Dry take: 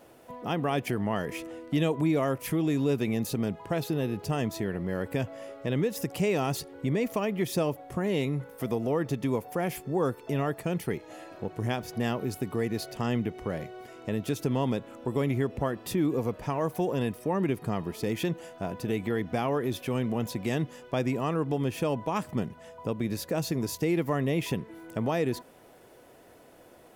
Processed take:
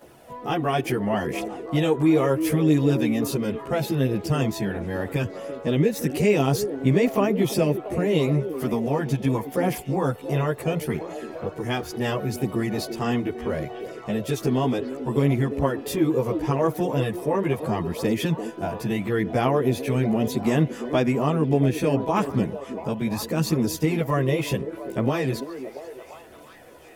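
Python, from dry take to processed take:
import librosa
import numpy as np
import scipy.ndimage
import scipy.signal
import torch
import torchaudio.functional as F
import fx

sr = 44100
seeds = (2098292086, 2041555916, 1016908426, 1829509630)

y = fx.wow_flutter(x, sr, seeds[0], rate_hz=2.1, depth_cents=16.0)
y = fx.chorus_voices(y, sr, voices=2, hz=0.36, base_ms=14, depth_ms=1.4, mix_pct=60)
y = fx.echo_stepped(y, sr, ms=340, hz=340.0, octaves=0.7, feedback_pct=70, wet_db=-7.0)
y = y * librosa.db_to_amplitude(8.0)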